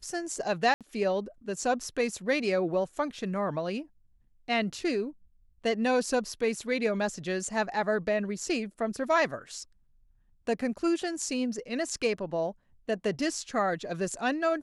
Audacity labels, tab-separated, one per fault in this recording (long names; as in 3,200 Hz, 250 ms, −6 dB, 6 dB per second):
0.740000	0.810000	drop-out 67 ms